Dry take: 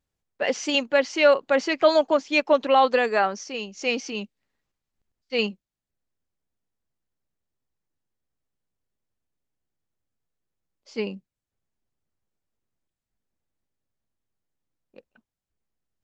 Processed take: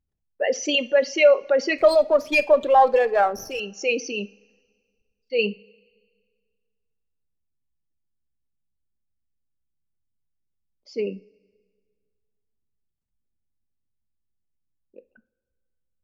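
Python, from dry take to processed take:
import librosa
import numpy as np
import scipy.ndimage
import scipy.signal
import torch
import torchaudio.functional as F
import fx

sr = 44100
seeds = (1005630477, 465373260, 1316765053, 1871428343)

y = fx.envelope_sharpen(x, sr, power=2.0)
y = fx.rev_double_slope(y, sr, seeds[0], early_s=0.31, late_s=1.8, knee_db=-20, drr_db=13.0)
y = fx.running_max(y, sr, window=3, at=(1.78, 3.6))
y = y * 10.0 ** (2.0 / 20.0)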